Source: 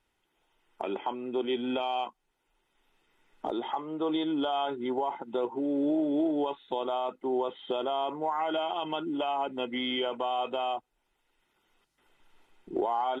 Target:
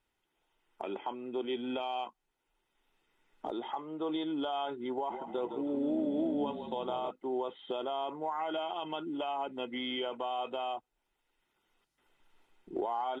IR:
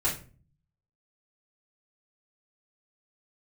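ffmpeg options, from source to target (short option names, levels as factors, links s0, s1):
-filter_complex "[0:a]asettb=1/sr,asplit=3[s0][s1][s2];[s0]atrim=end=4.944[s3];[s1]atrim=start=4.94:end=7.11,asetpts=PTS-STARTPTS,afade=t=in:d=0.004:c=qsin,afade=t=out:st=2.166:d=0.004:c=qsin,asplit=7[s4][s5][s6][s7][s8][s9][s10];[s5]adelay=160,afreqshift=-33,volume=0.398[s11];[s6]adelay=320,afreqshift=-66,volume=0.204[s12];[s7]adelay=480,afreqshift=-99,volume=0.104[s13];[s8]adelay=640,afreqshift=-132,volume=0.0531[s14];[s9]adelay=800,afreqshift=-165,volume=0.0269[s15];[s10]adelay=960,afreqshift=-198,volume=0.0138[s16];[s4][s11][s12][s13][s14][s15][s16]amix=inputs=7:normalize=0,atrim=end_sample=95697[s17];[s2]atrim=start=7.106[s18];[s3][s17]acrossfade=d=0.004:c1=hsin:c2=qsin[s19];[s19][s18]acrossfade=d=0.004:c1=qsin:c2=hsin,volume=0.562"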